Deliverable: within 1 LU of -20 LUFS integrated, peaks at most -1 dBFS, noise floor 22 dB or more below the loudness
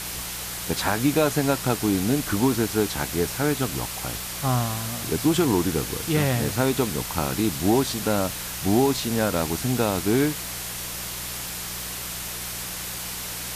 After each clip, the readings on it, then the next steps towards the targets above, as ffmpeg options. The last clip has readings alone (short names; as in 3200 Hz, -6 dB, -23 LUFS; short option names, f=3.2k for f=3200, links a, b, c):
hum 60 Hz; harmonics up to 180 Hz; hum level -42 dBFS; noise floor -33 dBFS; noise floor target -47 dBFS; loudness -24.5 LUFS; peak -8.0 dBFS; loudness target -20.0 LUFS
-> -af "bandreject=f=60:t=h:w=4,bandreject=f=120:t=h:w=4,bandreject=f=180:t=h:w=4"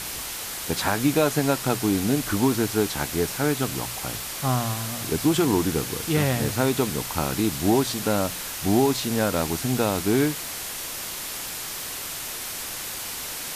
hum none; noise floor -33 dBFS; noise floor target -47 dBFS
-> -af "afftdn=nr=14:nf=-33"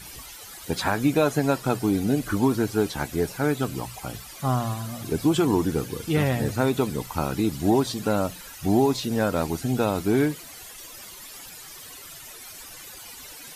noise floor -43 dBFS; noise floor target -47 dBFS
-> -af "afftdn=nr=6:nf=-43"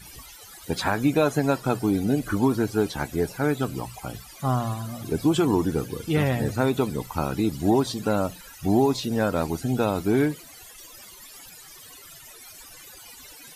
noise floor -46 dBFS; noise floor target -47 dBFS
-> -af "afftdn=nr=6:nf=-46"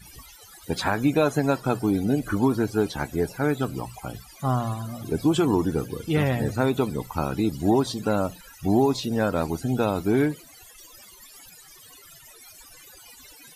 noise floor -49 dBFS; loudness -25.0 LUFS; peak -9.0 dBFS; loudness target -20.0 LUFS
-> -af "volume=5dB"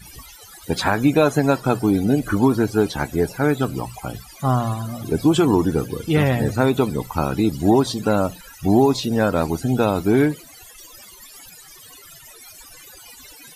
loudness -20.0 LUFS; peak -4.0 dBFS; noise floor -44 dBFS